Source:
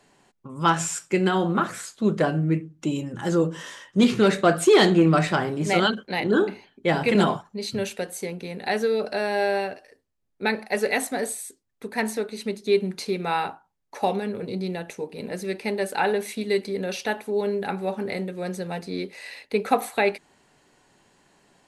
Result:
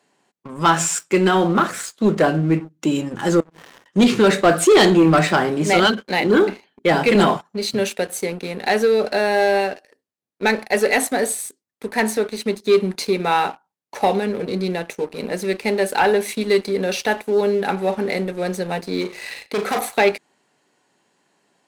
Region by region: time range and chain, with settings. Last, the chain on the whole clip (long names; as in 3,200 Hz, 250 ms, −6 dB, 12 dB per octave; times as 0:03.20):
0:03.40–0:03.86: downward compressor 8 to 1, threshold −37 dBFS + slack as between gear wheels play −34 dBFS
0:19.01–0:19.79: gain into a clipping stage and back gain 26 dB + flutter between parallel walls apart 6.7 metres, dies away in 0.32 s
whole clip: high-pass filter 180 Hz 12 dB per octave; leveller curve on the samples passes 2